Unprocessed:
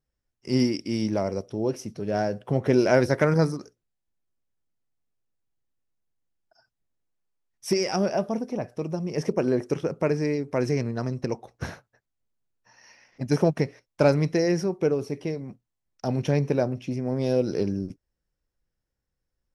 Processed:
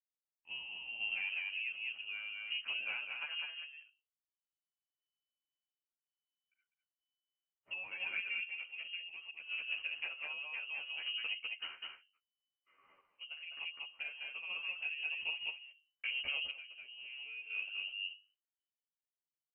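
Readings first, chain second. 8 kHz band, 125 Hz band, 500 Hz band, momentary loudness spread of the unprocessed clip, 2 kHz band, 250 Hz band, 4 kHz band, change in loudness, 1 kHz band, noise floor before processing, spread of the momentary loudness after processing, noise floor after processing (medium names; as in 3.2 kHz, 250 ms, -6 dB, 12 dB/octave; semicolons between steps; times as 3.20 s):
under -35 dB, under -40 dB, under -40 dB, 12 LU, -1.5 dB, under -40 dB, +0.5 dB, -14.0 dB, -23.5 dB, -83 dBFS, 10 LU, under -85 dBFS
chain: local Wiener filter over 9 samples; hum notches 50/100/150/200/250/300/350 Hz; delay 201 ms -4.5 dB; compression 6:1, threshold -28 dBFS, peak gain reduction 13 dB; frequency inversion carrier 3 kHz; expander -59 dBFS; bass shelf 170 Hz -3.5 dB; random-step tremolo 2 Hz, depth 80%; peaking EQ 540 Hz +3 dB; endless flanger 11.7 ms -0.56 Hz; trim -3.5 dB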